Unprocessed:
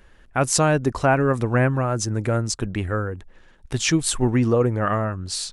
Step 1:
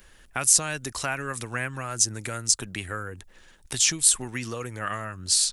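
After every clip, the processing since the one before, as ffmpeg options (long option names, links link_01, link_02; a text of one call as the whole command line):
ffmpeg -i in.wav -filter_complex "[0:a]acrossover=split=92|1400[link_01][link_02][link_03];[link_01]acompressor=threshold=-45dB:ratio=4[link_04];[link_02]acompressor=threshold=-32dB:ratio=4[link_05];[link_03]acompressor=threshold=-27dB:ratio=4[link_06];[link_04][link_05][link_06]amix=inputs=3:normalize=0,crystalizer=i=4.5:c=0,volume=-3.5dB" out.wav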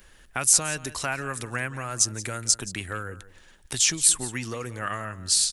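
ffmpeg -i in.wav -af "aecho=1:1:175:0.15" out.wav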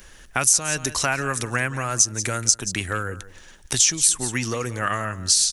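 ffmpeg -i in.wav -af "equalizer=frequency=6000:width=3.7:gain=7,acompressor=threshold=-22dB:ratio=4,volume=6.5dB" out.wav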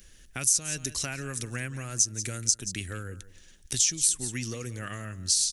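ffmpeg -i in.wav -af "equalizer=frequency=960:width=0.79:gain=-14.5,volume=-5.5dB" out.wav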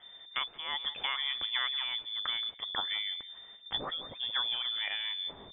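ffmpeg -i in.wav -af "lowpass=frequency=3100:width_type=q:width=0.5098,lowpass=frequency=3100:width_type=q:width=0.6013,lowpass=frequency=3100:width_type=q:width=0.9,lowpass=frequency=3100:width_type=q:width=2.563,afreqshift=-3600,volume=2dB" out.wav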